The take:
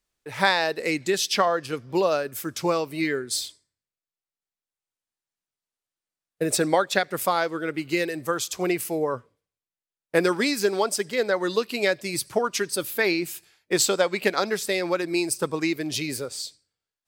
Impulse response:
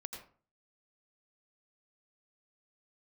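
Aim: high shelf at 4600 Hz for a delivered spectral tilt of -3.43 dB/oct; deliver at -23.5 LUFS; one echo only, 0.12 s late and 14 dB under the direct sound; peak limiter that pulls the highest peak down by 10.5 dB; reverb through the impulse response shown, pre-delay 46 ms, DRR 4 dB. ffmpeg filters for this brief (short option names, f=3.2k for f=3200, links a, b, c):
-filter_complex "[0:a]highshelf=f=4.6k:g=-3,alimiter=limit=-14.5dB:level=0:latency=1,aecho=1:1:120:0.2,asplit=2[a][b];[1:a]atrim=start_sample=2205,adelay=46[c];[b][c]afir=irnorm=-1:irlink=0,volume=-1.5dB[d];[a][d]amix=inputs=2:normalize=0,volume=2dB"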